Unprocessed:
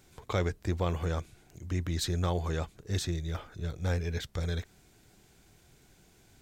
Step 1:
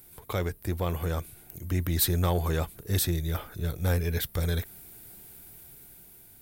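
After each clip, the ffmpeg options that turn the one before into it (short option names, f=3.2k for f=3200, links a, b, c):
-af "dynaudnorm=f=510:g=5:m=5dB,aexciter=amount=9.6:drive=5.9:freq=9.5k,asoftclip=type=tanh:threshold=-15dB"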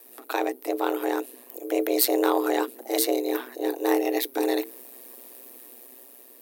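-af "bandreject=f=50:t=h:w=6,bandreject=f=100:t=h:w=6,afreqshift=290,aeval=exprs='val(0)*sin(2*PI*62*n/s)':c=same,volume=6dB"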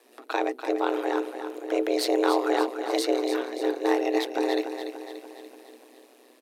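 -filter_complex "[0:a]highpass=220,lowpass=5.4k,asplit=2[a][b];[b]aecho=0:1:290|580|870|1160|1450|1740:0.355|0.192|0.103|0.0559|0.0302|0.0163[c];[a][c]amix=inputs=2:normalize=0"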